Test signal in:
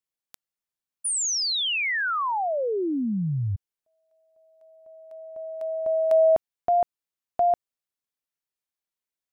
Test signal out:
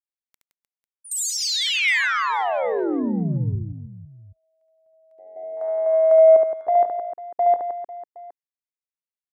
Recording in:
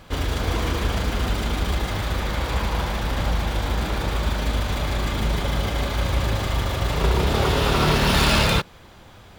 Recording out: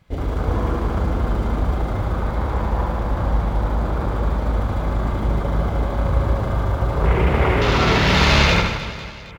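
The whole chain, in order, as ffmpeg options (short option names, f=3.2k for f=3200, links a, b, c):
-filter_complex "[0:a]afwtdn=0.0398,equalizer=f=2.1k:w=5.1:g=6.5,asplit=2[a][b];[b]aecho=0:1:70|168|305.2|497.3|766.2:0.631|0.398|0.251|0.158|0.1[c];[a][c]amix=inputs=2:normalize=0,volume=1dB"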